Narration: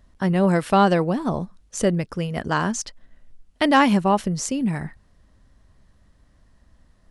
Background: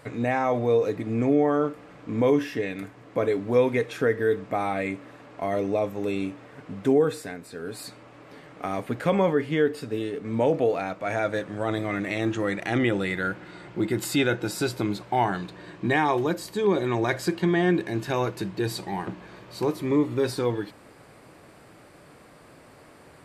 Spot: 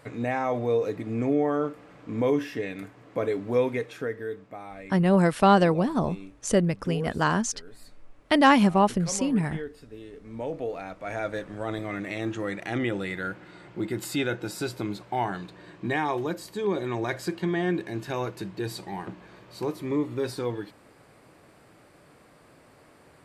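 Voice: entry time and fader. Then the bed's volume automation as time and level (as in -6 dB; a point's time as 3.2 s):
4.70 s, -1.5 dB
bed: 3.62 s -3 dB
4.61 s -14.5 dB
9.94 s -14.5 dB
11.26 s -4.5 dB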